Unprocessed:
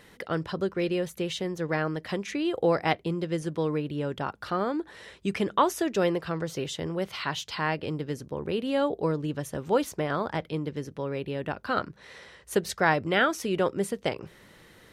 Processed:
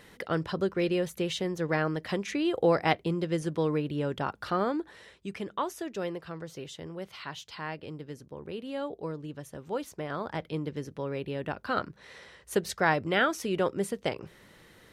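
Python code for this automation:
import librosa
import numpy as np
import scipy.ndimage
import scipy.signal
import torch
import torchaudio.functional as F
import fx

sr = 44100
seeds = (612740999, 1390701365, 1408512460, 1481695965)

y = fx.gain(x, sr, db=fx.line((4.68, 0.0), (5.27, -9.0), (9.82, -9.0), (10.57, -2.0)))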